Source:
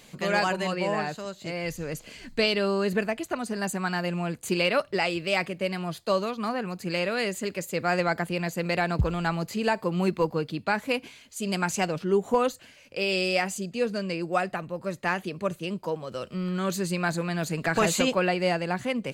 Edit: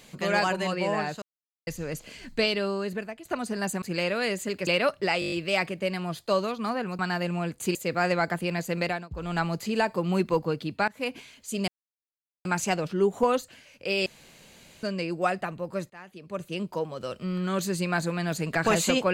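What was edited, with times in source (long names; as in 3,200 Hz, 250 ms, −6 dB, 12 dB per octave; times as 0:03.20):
0:01.22–0:01.67: silence
0:02.31–0:03.25: fade out, to −13 dB
0:03.82–0:04.58: swap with 0:06.78–0:07.63
0:05.11: stutter 0.02 s, 7 plays
0:08.70–0:09.24: duck −22.5 dB, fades 0.26 s
0:10.76–0:11.03: fade in, from −21.5 dB
0:11.56: splice in silence 0.77 s
0:13.17–0:13.94: fill with room tone
0:15.01–0:15.66: fade in quadratic, from −20.5 dB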